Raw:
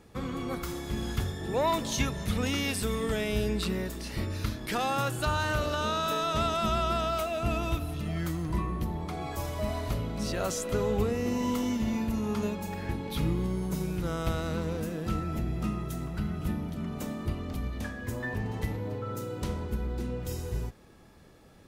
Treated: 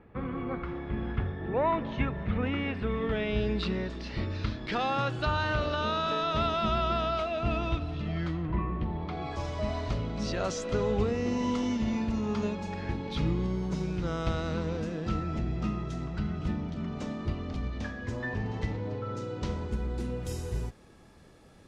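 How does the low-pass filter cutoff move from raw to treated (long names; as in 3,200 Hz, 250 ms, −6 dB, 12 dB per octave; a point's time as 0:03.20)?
low-pass filter 24 dB per octave
0:02.74 2,400 Hz
0:03.64 4,600 Hz
0:08.23 4,600 Hz
0:08.59 2,600 Hz
0:09.47 6,000 Hz
0:19.39 6,000 Hz
0:20.07 11,000 Hz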